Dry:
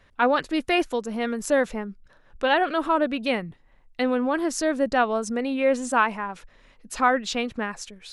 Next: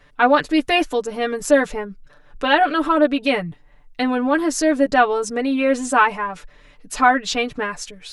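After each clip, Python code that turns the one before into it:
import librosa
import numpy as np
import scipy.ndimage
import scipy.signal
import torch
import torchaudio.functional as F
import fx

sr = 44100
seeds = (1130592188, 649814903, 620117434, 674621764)

y = x + 0.81 * np.pad(x, (int(6.8 * sr / 1000.0), 0))[:len(x)]
y = y * librosa.db_to_amplitude(3.5)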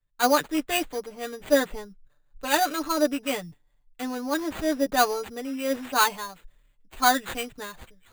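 y = fx.sample_hold(x, sr, seeds[0], rate_hz=5400.0, jitter_pct=0)
y = fx.band_widen(y, sr, depth_pct=70)
y = y * librosa.db_to_amplitude(-8.5)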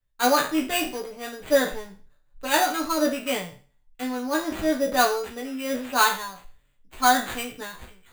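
y = fx.spec_trails(x, sr, decay_s=0.4)
y = fx.doubler(y, sr, ms=16.0, db=-6.0)
y = y * librosa.db_to_amplitude(-1.0)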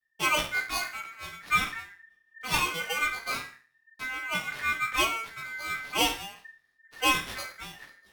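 y = x * np.sin(2.0 * np.pi * 1800.0 * np.arange(len(x)) / sr)
y = y * librosa.db_to_amplitude(-3.0)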